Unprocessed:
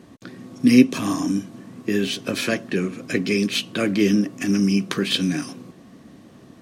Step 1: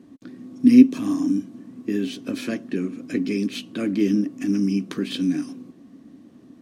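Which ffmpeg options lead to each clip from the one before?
-af "equalizer=f=270:t=o:w=0.77:g=13.5,volume=0.316"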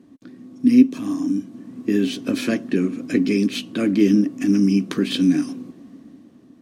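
-af "dynaudnorm=f=120:g=13:m=2.37,volume=0.841"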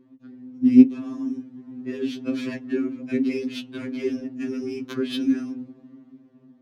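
-af "adynamicsmooth=sensitivity=2:basefreq=3200,afftfilt=real='re*2.45*eq(mod(b,6),0)':imag='im*2.45*eq(mod(b,6),0)':win_size=2048:overlap=0.75,volume=0.708"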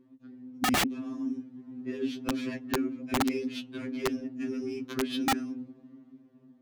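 -af "aeval=exprs='(mod(6.31*val(0)+1,2)-1)/6.31':c=same,volume=0.596"

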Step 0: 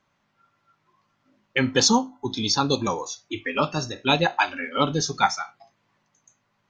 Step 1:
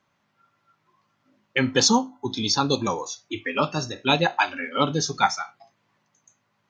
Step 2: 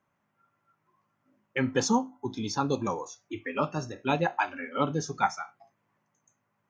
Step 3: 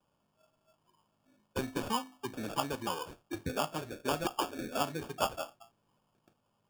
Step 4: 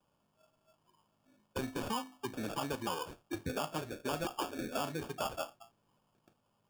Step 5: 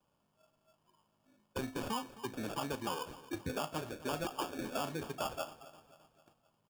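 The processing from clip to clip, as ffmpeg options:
-af "highpass=66"
-af "equalizer=f=4100:w=1.2:g=-13.5,volume=0.596"
-filter_complex "[0:a]acrossover=split=260|880|3900[s0][s1][s2][s3];[s0]acompressor=threshold=0.00501:ratio=4[s4];[s1]acompressor=threshold=0.01:ratio=4[s5];[s2]acompressor=threshold=0.0316:ratio=4[s6];[s3]acompressor=threshold=0.00447:ratio=4[s7];[s4][s5][s6][s7]amix=inputs=4:normalize=0,acrusher=samples=22:mix=1:aa=0.000001"
-af "alimiter=level_in=1.5:limit=0.0631:level=0:latency=1:release=29,volume=0.668"
-af "aecho=1:1:264|528|792|1056:0.141|0.0706|0.0353|0.0177,volume=0.891"

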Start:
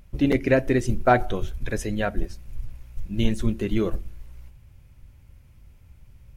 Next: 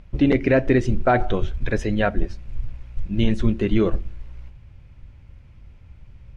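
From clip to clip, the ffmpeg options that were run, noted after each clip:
-af "lowpass=3900,alimiter=level_in=3.98:limit=0.891:release=50:level=0:latency=1,volume=0.447"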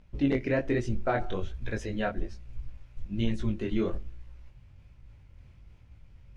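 -af "bass=f=250:g=-1,treble=f=4000:g=4,areverse,acompressor=mode=upward:threshold=0.0158:ratio=2.5,areverse,flanger=delay=17:depth=6.5:speed=1.2,volume=0.473"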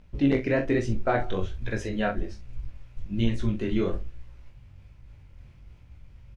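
-filter_complex "[0:a]asplit=2[s0][s1];[s1]adelay=43,volume=0.335[s2];[s0][s2]amix=inputs=2:normalize=0,volume=1.41"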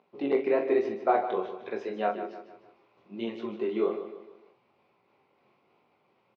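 -filter_complex "[0:a]highpass=f=250:w=0.5412,highpass=f=250:w=1.3066,equalizer=f=280:t=q:w=4:g=-6,equalizer=f=400:t=q:w=4:g=8,equalizer=f=770:t=q:w=4:g=8,equalizer=f=1100:t=q:w=4:g=7,equalizer=f=1700:t=q:w=4:g=-8,equalizer=f=3200:t=q:w=4:g=-5,lowpass=f=4100:w=0.5412,lowpass=f=4100:w=1.3066,asplit=2[s0][s1];[s1]aecho=0:1:152|304|456|608:0.299|0.125|0.0527|0.0221[s2];[s0][s2]amix=inputs=2:normalize=0,volume=0.668"

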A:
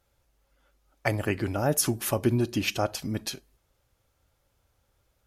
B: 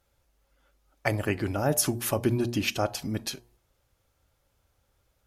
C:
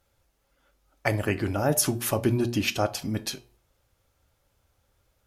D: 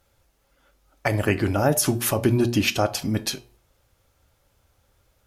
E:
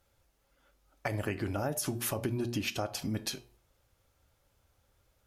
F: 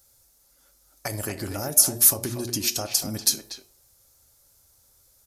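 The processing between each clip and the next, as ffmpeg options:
-af "bandreject=f=119:t=h:w=4,bandreject=f=238:t=h:w=4,bandreject=f=357:t=h:w=4,bandreject=f=476:t=h:w=4,bandreject=f=595:t=h:w=4,bandreject=f=714:t=h:w=4,bandreject=f=833:t=h:w=4,bandreject=f=952:t=h:w=4,bandreject=f=1071:t=h:w=4"
-af "flanger=delay=9.2:depth=2.4:regen=-79:speed=0.4:shape=triangular,volume=2"
-af "alimiter=limit=0.2:level=0:latency=1:release=112,volume=1.78"
-af "acompressor=threshold=0.0631:ratio=4,volume=0.473"
-filter_complex "[0:a]asplit=2[s0][s1];[s1]adelay=240,highpass=300,lowpass=3400,asoftclip=type=hard:threshold=0.0447,volume=0.447[s2];[s0][s2]amix=inputs=2:normalize=0,aresample=32000,aresample=44100,aexciter=amount=4.6:drive=7.8:freq=4200,volume=1.19"

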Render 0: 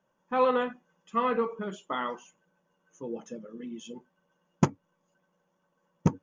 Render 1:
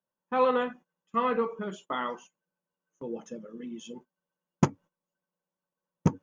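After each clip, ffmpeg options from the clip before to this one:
-af "agate=range=0.141:threshold=0.00398:ratio=16:detection=peak"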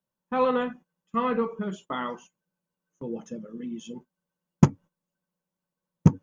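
-af "bass=f=250:g=9,treble=f=4000:g=1"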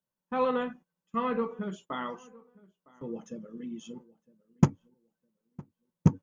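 -filter_complex "[0:a]asplit=2[s0][s1];[s1]adelay=959,lowpass=f=1600:p=1,volume=0.0708,asplit=2[s2][s3];[s3]adelay=959,lowpass=f=1600:p=1,volume=0.24[s4];[s0][s2][s4]amix=inputs=3:normalize=0,volume=0.631"

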